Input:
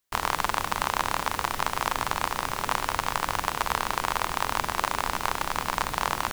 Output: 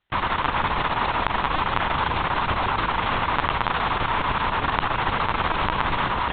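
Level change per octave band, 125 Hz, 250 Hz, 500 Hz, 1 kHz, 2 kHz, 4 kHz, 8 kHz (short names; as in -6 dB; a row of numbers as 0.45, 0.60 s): +9.5 dB, +8.0 dB, +5.0 dB, +5.0 dB, +5.0 dB, +3.5 dB, under -40 dB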